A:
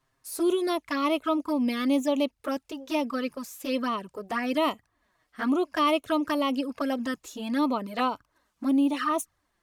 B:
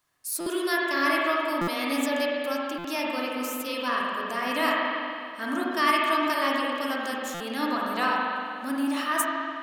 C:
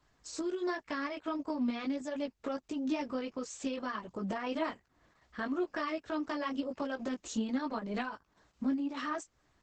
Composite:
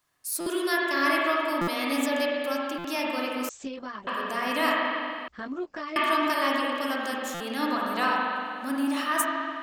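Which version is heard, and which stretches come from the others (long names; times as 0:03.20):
B
0:03.49–0:04.07: punch in from C
0:05.28–0:05.96: punch in from C
not used: A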